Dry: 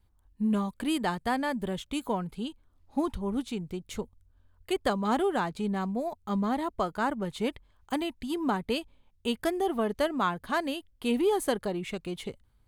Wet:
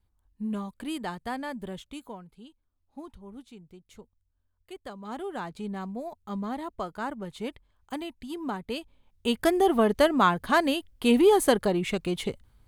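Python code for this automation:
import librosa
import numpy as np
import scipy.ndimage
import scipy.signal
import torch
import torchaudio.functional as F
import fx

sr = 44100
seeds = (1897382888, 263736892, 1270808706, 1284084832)

y = fx.gain(x, sr, db=fx.line((1.78, -5.0), (2.26, -14.0), (4.9, -14.0), (5.51, -4.5), (8.66, -4.5), (9.55, 6.5)))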